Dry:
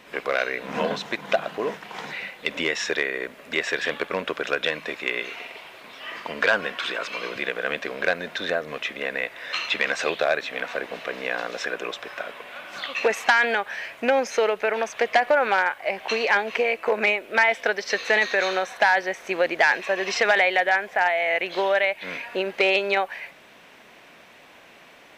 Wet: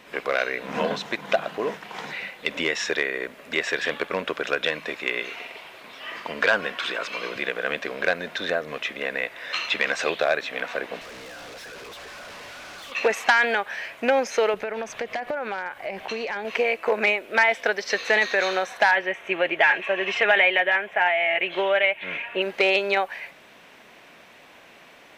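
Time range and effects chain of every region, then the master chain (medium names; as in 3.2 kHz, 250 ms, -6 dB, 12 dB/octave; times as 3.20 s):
11.01–12.92 s: one-bit delta coder 32 kbps, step -30 dBFS + valve stage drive 39 dB, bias 0.25
14.54–16.45 s: compression 3:1, threshold -30 dBFS + bass shelf 280 Hz +10.5 dB
18.91–22.42 s: resonant high shelf 3.7 kHz -7.5 dB, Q 3 + comb of notches 250 Hz
whole clip: none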